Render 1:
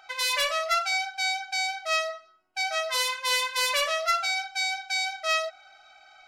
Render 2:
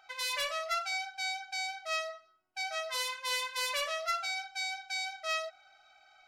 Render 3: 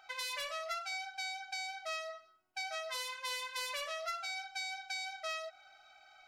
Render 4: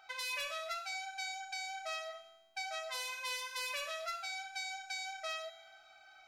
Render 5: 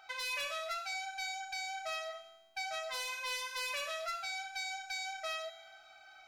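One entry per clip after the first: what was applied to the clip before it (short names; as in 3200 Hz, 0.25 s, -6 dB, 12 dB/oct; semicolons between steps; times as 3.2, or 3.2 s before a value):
bell 110 Hz +6 dB 0.76 oct; gain -8 dB
compressor 4:1, threshold -38 dBFS, peak gain reduction 9 dB; gain +1 dB
resonator 110 Hz, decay 1.2 s, harmonics all, mix 80%; gain +11.5 dB
soft clip -30.5 dBFS, distortion -19 dB; gain +2.5 dB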